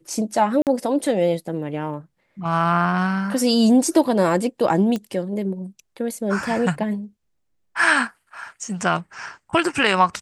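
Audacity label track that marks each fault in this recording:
0.620000	0.670000	dropout 48 ms
4.960000	4.960000	pop -14 dBFS

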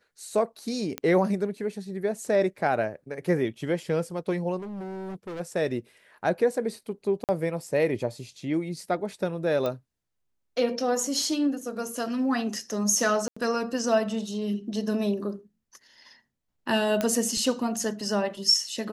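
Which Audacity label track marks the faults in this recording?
0.980000	0.980000	pop -14 dBFS
4.580000	5.410000	clipped -33.5 dBFS
7.240000	7.290000	dropout 48 ms
9.660000	9.660000	pop -17 dBFS
13.280000	13.370000	dropout 85 ms
17.010000	17.010000	pop -12 dBFS

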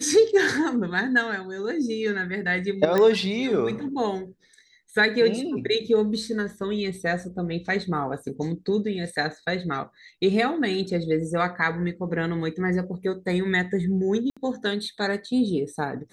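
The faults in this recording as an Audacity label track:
2.980000	2.980000	pop -11 dBFS
14.300000	14.370000	dropout 66 ms

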